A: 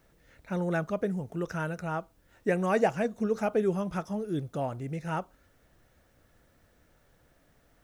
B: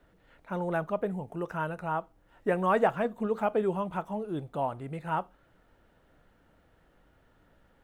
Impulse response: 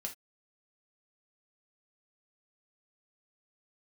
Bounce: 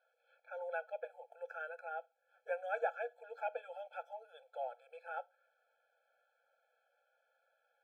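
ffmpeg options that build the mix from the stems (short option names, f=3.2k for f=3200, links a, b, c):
-filter_complex "[0:a]asplit=3[a][b][c];[a]bandpass=f=530:t=q:w=8,volume=0dB[d];[b]bandpass=f=1.84k:t=q:w=8,volume=-6dB[e];[c]bandpass=f=2.48k:t=q:w=8,volume=-9dB[f];[d][e][f]amix=inputs=3:normalize=0,volume=-6dB[g];[1:a]volume=-7.5dB,asplit=2[h][i];[i]volume=-14.5dB[j];[2:a]atrim=start_sample=2205[k];[j][k]afir=irnorm=-1:irlink=0[l];[g][h][l]amix=inputs=3:normalize=0,acrossover=split=600 4500:gain=0.158 1 0.251[m][n][o];[m][n][o]amix=inputs=3:normalize=0,afftfilt=real='re*eq(mod(floor(b*sr/1024/440),2),1)':imag='im*eq(mod(floor(b*sr/1024/440),2),1)':win_size=1024:overlap=0.75"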